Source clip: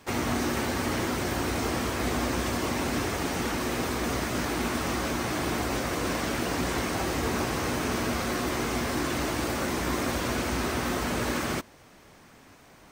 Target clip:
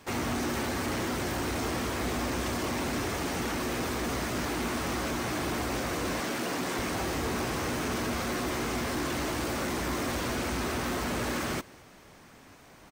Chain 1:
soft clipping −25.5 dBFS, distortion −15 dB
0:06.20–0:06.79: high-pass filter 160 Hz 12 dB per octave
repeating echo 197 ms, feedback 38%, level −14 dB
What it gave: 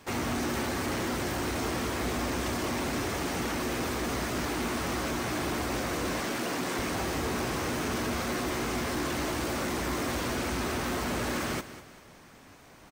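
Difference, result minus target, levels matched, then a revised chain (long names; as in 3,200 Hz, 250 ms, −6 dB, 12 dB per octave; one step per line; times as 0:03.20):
echo-to-direct +10.5 dB
soft clipping −25.5 dBFS, distortion −15 dB
0:06.20–0:06.79: high-pass filter 160 Hz 12 dB per octave
repeating echo 197 ms, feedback 38%, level −24.5 dB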